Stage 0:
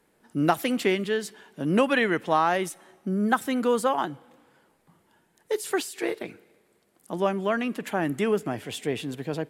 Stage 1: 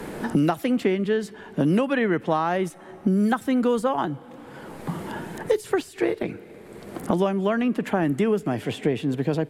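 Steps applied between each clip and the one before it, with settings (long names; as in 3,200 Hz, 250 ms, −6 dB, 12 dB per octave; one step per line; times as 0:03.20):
spectral tilt −2 dB per octave
multiband upward and downward compressor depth 100%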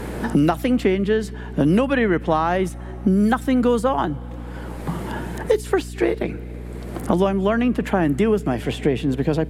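mains hum 60 Hz, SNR 12 dB
level +3.5 dB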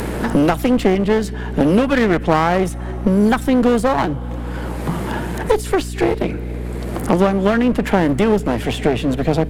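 upward compression, threshold −26 dBFS
asymmetric clip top −28 dBFS
level +6.5 dB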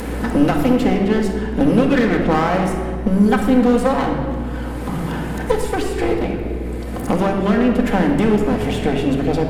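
convolution reverb RT60 1.7 s, pre-delay 4 ms, DRR 0 dB
level −4.5 dB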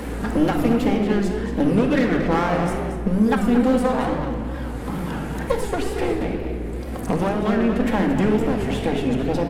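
tape wow and flutter 130 cents
single-tap delay 228 ms −10 dB
level −4 dB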